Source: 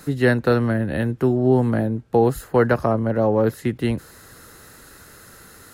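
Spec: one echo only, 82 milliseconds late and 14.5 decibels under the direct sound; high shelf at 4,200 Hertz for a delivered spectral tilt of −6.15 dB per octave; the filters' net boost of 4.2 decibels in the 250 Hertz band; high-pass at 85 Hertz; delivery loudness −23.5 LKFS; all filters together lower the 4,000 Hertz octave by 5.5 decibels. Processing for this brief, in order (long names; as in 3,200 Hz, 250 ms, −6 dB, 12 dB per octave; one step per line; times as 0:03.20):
high-pass filter 85 Hz
parametric band 250 Hz +5 dB
parametric band 4,000 Hz −4.5 dB
high-shelf EQ 4,200 Hz −5 dB
single-tap delay 82 ms −14.5 dB
level −5.5 dB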